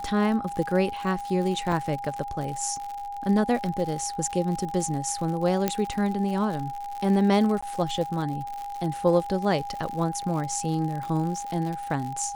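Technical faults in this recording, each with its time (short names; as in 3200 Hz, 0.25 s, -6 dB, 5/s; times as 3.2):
crackle 85/s -31 dBFS
tone 810 Hz -32 dBFS
1.72 gap 4.8 ms
5.68 pop -9 dBFS
7.61–7.62 gap 15 ms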